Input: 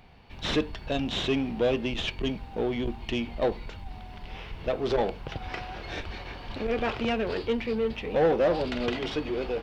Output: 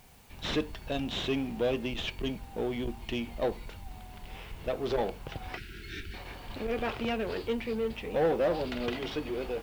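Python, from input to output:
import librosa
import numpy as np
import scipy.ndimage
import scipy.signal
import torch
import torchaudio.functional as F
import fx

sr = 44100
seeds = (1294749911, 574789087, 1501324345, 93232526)

y = fx.brickwall_bandstop(x, sr, low_hz=440.0, high_hz=1300.0, at=(5.57, 6.14))
y = fx.dmg_noise_colour(y, sr, seeds[0], colour='white', level_db=-58.0)
y = y * 10.0 ** (-4.0 / 20.0)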